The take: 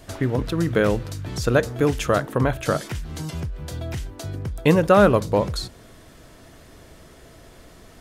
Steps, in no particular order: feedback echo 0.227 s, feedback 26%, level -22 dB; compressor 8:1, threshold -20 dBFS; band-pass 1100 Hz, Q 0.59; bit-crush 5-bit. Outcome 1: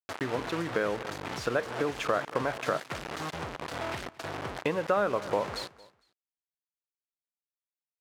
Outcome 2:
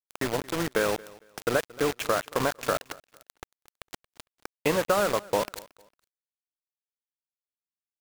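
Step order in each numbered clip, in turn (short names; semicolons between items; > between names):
bit-crush > feedback echo > compressor > band-pass; band-pass > compressor > bit-crush > feedback echo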